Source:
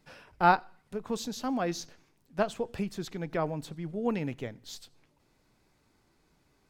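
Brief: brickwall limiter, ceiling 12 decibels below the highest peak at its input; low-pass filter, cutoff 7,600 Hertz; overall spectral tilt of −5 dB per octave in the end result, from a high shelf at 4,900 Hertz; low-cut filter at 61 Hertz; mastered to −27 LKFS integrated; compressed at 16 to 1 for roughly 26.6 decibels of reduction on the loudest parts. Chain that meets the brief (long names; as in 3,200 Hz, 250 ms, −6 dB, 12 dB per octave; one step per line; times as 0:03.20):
high-pass filter 61 Hz
low-pass filter 7,600 Hz
high-shelf EQ 4,900 Hz −5 dB
downward compressor 16 to 1, threshold −43 dBFS
level +24 dB
brickwall limiter −15.5 dBFS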